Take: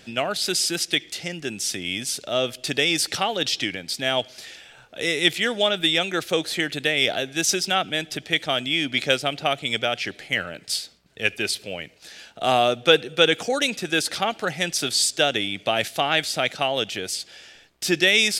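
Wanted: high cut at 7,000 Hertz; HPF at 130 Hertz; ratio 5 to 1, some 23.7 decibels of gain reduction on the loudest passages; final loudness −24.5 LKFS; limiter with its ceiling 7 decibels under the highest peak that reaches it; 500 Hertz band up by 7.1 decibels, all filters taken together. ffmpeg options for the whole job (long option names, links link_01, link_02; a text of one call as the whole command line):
ffmpeg -i in.wav -af "highpass=130,lowpass=7000,equalizer=frequency=500:width_type=o:gain=8.5,acompressor=threshold=-33dB:ratio=5,volume=12dB,alimiter=limit=-13dB:level=0:latency=1" out.wav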